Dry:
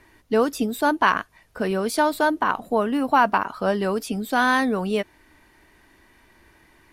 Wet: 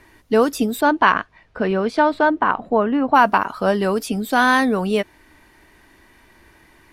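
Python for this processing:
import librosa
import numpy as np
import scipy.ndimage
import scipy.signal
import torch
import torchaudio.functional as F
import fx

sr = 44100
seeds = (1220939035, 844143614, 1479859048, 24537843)

y = fx.lowpass(x, sr, hz=fx.line((0.8, 4400.0), (3.14, 2100.0)), slope=12, at=(0.8, 3.14), fade=0.02)
y = y * librosa.db_to_amplitude(4.0)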